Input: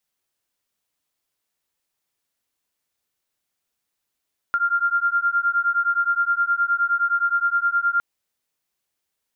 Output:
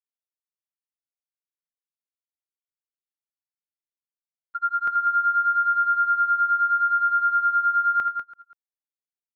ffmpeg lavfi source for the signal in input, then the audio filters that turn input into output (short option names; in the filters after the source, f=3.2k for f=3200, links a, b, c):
-f lavfi -i "aevalsrc='0.0891*(sin(2*PI*1390*t)+sin(2*PI*1399.6*t))':d=3.46:s=44100"
-filter_complex "[0:a]asplit=2[a][b];[b]aecho=0:1:335:0.668[c];[a][c]amix=inputs=2:normalize=0,agate=range=-35dB:threshold=-20dB:ratio=16:detection=peak,asplit=2[d][e];[e]aecho=0:1:81.63|195.3:0.282|0.398[f];[d][f]amix=inputs=2:normalize=0"